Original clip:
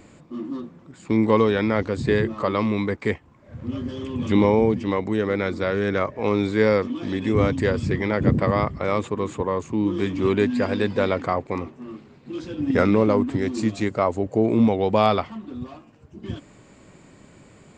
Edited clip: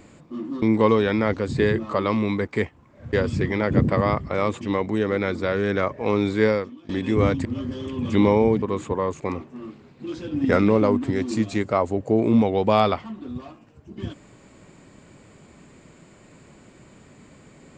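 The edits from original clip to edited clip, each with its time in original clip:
0.62–1.11 s: delete
3.62–4.79 s: swap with 7.63–9.11 s
6.63–7.07 s: fade out quadratic, to -18.5 dB
9.69–11.46 s: delete

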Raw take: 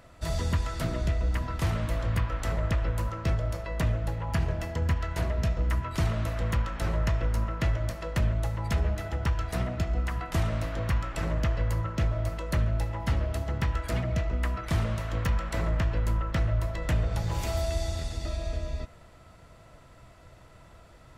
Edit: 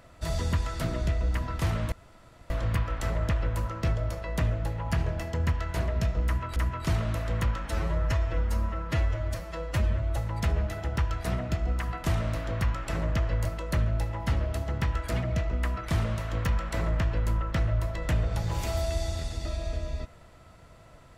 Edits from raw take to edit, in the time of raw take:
1.92 s: insert room tone 0.58 s
5.67–5.98 s: loop, 2 plays
6.78–8.44 s: stretch 1.5×
11.73–12.25 s: delete

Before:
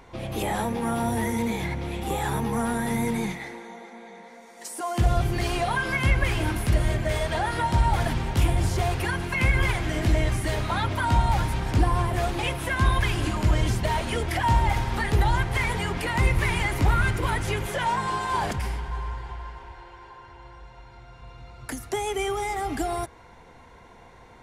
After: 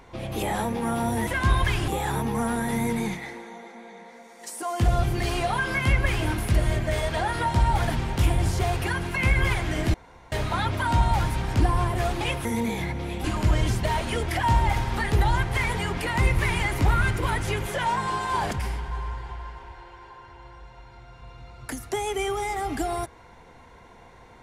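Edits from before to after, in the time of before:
1.27–2.06 s: swap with 12.63–13.24 s
10.12–10.50 s: room tone

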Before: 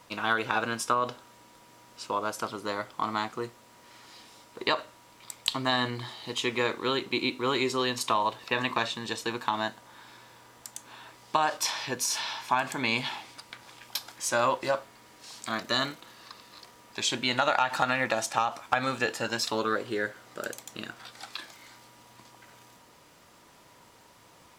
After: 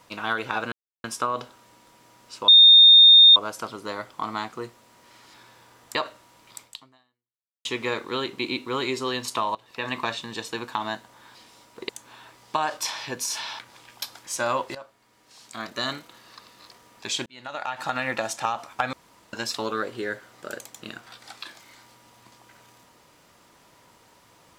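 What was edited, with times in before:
0.72 s: insert silence 0.32 s
2.16 s: add tone 3.66 kHz -8 dBFS 0.88 s
4.14–4.68 s: swap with 10.08–10.69 s
5.35–6.38 s: fade out exponential
8.28–8.67 s: fade in, from -19.5 dB
12.39–13.52 s: delete
14.68–15.98 s: fade in linear, from -15.5 dB
17.19–18.00 s: fade in linear
18.86–19.26 s: room tone

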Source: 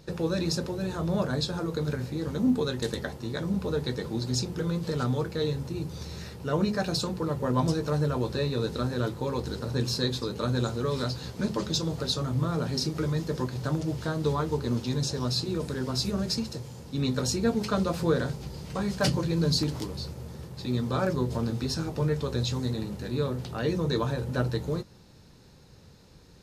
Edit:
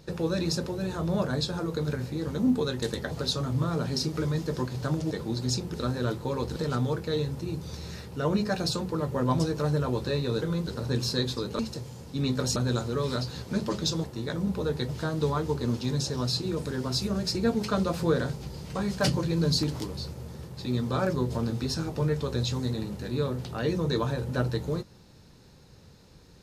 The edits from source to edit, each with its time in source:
3.11–3.96 s: swap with 11.92–13.92 s
4.59–4.84 s: swap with 8.70–9.52 s
16.38–17.35 s: move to 10.44 s

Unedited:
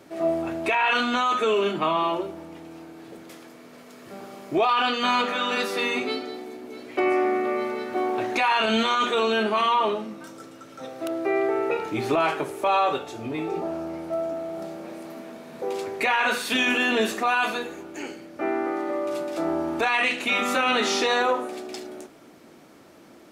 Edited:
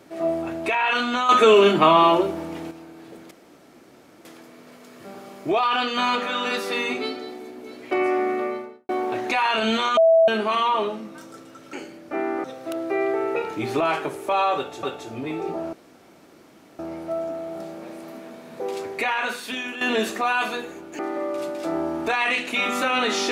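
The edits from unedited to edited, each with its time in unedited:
1.29–2.71 s: gain +8.5 dB
3.31 s: insert room tone 0.94 s
7.44–7.95 s: studio fade out
9.03–9.34 s: bleep 655 Hz -11.5 dBFS
12.91–13.18 s: loop, 2 plays
13.81 s: insert room tone 1.06 s
15.88–16.83 s: fade out, to -12.5 dB
18.01–18.72 s: move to 10.79 s

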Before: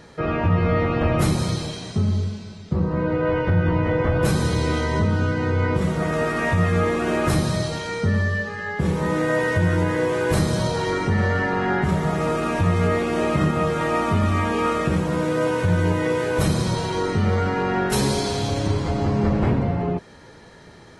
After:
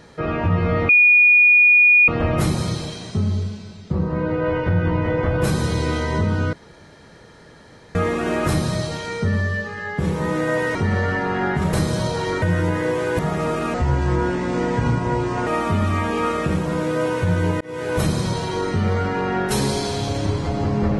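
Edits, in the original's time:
0.89 s: add tone 2.45 kHz -9 dBFS 1.19 s
5.34–6.76 s: room tone
9.56–10.33 s: swap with 11.02–12.00 s
12.55–13.88 s: speed 77%
16.02–16.34 s: fade in

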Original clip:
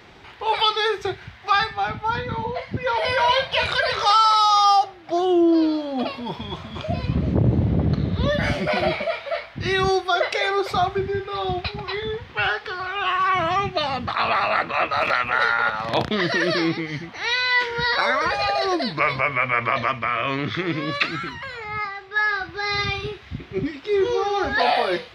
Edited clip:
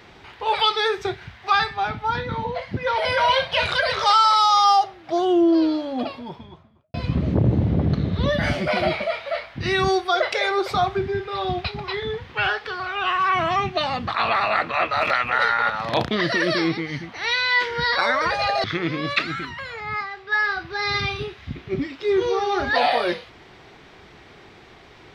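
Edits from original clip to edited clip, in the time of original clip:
5.74–6.94 s: studio fade out
18.64–20.48 s: delete

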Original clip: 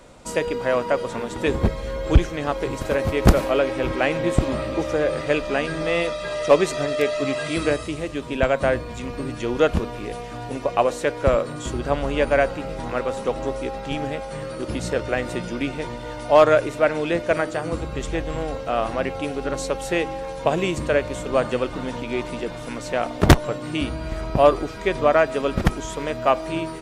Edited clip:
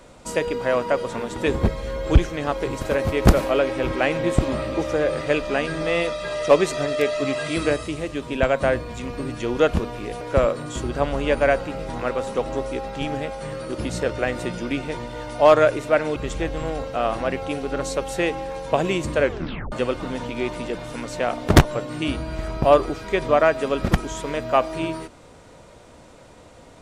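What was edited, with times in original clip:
10.21–11.11 s: delete
17.06–17.89 s: delete
20.95 s: tape stop 0.50 s

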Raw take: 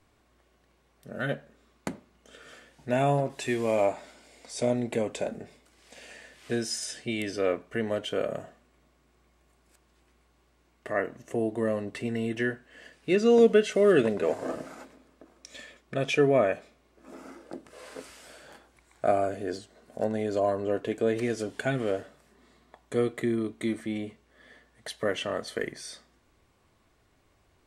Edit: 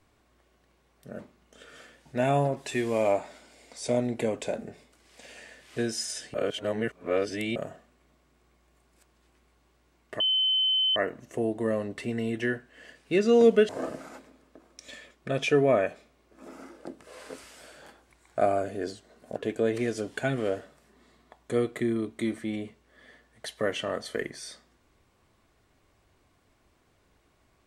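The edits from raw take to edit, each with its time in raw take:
1.19–1.92 s: delete
7.07–8.29 s: reverse
10.93 s: add tone 3.06 kHz -21.5 dBFS 0.76 s
13.66–14.35 s: delete
20.02–20.78 s: delete

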